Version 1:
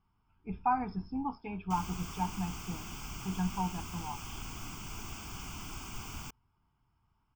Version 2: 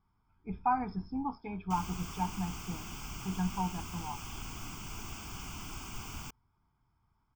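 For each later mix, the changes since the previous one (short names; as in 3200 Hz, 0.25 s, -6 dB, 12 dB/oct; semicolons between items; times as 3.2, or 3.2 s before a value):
speech: add Butterworth band-stop 2800 Hz, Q 4.8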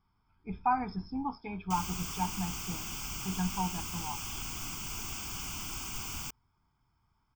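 master: add high shelf 2600 Hz +9 dB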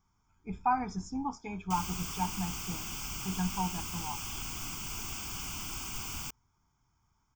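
speech: remove brick-wall FIR low-pass 5400 Hz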